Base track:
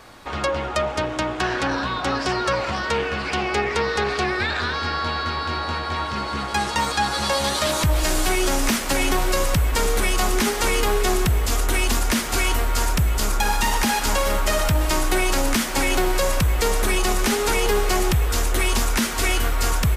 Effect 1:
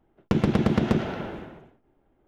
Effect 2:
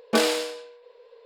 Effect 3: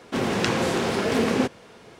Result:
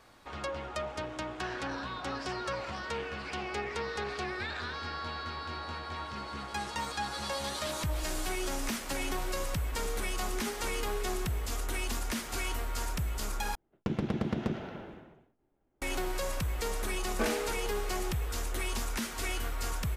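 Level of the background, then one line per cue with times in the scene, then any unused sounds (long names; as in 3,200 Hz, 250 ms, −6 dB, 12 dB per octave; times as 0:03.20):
base track −13.5 dB
0:13.55: overwrite with 1 −10 dB
0:17.06: mix in 2 −11 dB + high shelf with overshoot 2,800 Hz −8 dB, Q 1.5
not used: 3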